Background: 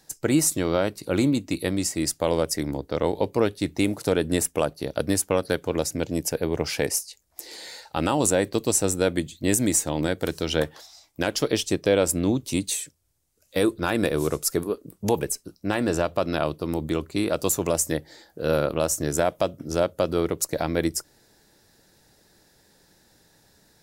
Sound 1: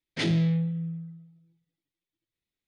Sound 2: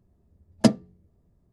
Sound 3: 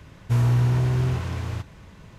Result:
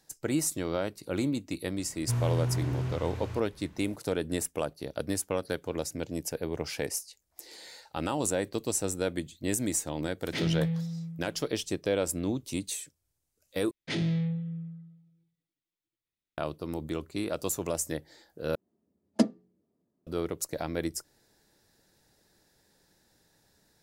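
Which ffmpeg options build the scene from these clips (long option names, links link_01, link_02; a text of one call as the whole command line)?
ffmpeg -i bed.wav -i cue0.wav -i cue1.wav -i cue2.wav -filter_complex "[1:a]asplit=2[link_01][link_02];[0:a]volume=-8dB[link_03];[2:a]highpass=frequency=260:width_type=q:width=1.8[link_04];[link_03]asplit=3[link_05][link_06][link_07];[link_05]atrim=end=13.714[link_08];[link_02]atrim=end=2.67,asetpts=PTS-STARTPTS,volume=-4.5dB[link_09];[link_06]atrim=start=16.376:end=18.554[link_10];[link_04]atrim=end=1.52,asetpts=PTS-STARTPTS,volume=-8.5dB[link_11];[link_07]atrim=start=20.066[link_12];[3:a]atrim=end=2.18,asetpts=PTS-STARTPTS,volume=-9dB,afade=type=in:duration=0.004:curve=hsin,afade=type=out:start_time=2.176:duration=0.004:curve=hsin,adelay=1780[link_13];[link_01]atrim=end=2.67,asetpts=PTS-STARTPTS,volume=-4.5dB,afade=type=in:duration=0.004:curve=hsin,afade=type=out:start_time=2.666:duration=0.004:curve=hsin,adelay=10160[link_14];[link_08][link_09]acrossfade=duration=0.004:curve1=hsin:curve2=hsin[link_15];[link_15][link_10]acrossfade=duration=0.004:curve1=hsin:curve2=hsin[link_16];[link_16][link_11]acrossfade=duration=0.004:curve1=hsin:curve2=hsin[link_17];[link_17][link_12]acrossfade=duration=0.004:curve1=hsin:curve2=hsin[link_18];[link_18][link_13][link_14]amix=inputs=3:normalize=0" out.wav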